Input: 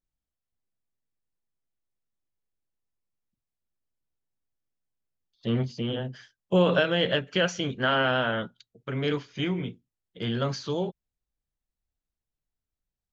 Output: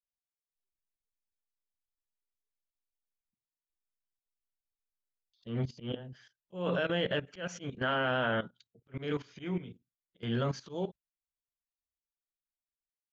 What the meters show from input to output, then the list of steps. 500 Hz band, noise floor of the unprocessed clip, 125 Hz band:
−7.5 dB, below −85 dBFS, −7.0 dB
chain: noise reduction from a noise print of the clip's start 18 dB
dynamic equaliser 4,400 Hz, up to −7 dB, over −47 dBFS, Q 1.7
output level in coarse steps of 15 dB
volume swells 163 ms

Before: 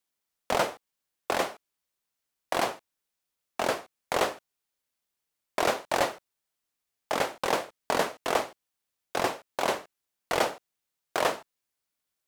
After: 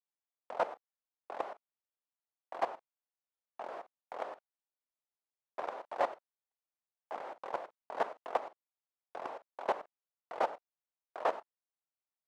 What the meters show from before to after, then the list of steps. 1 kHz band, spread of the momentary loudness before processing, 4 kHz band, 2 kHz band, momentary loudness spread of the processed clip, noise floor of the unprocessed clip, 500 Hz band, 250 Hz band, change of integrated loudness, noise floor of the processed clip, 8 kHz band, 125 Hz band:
−7.5 dB, 10 LU, −21.0 dB, −14.5 dB, 16 LU, −85 dBFS, −9.0 dB, −16.0 dB, −9.5 dB, below −85 dBFS, below −25 dB, below −20 dB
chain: brickwall limiter −19 dBFS, peak gain reduction 8 dB
resonant band-pass 790 Hz, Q 1.2
output level in coarse steps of 16 dB
level +4.5 dB

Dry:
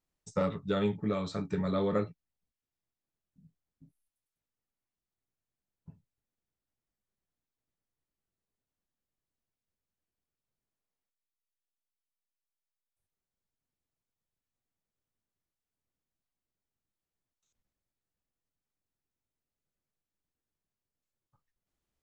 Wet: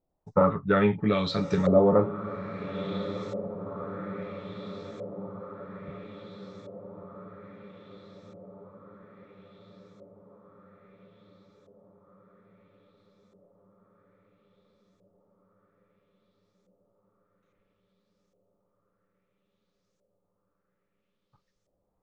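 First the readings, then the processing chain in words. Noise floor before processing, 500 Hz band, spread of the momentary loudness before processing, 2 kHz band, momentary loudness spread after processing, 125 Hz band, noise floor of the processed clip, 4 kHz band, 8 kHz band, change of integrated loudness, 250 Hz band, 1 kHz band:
below −85 dBFS, +9.5 dB, 5 LU, +10.5 dB, 22 LU, +7.5 dB, −78 dBFS, +8.0 dB, can't be measured, +4.5 dB, +7.5 dB, +10.5 dB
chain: feedback delay with all-pass diffusion 1,192 ms, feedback 67%, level −10.5 dB
auto-filter low-pass saw up 0.6 Hz 590–6,700 Hz
level +6.5 dB

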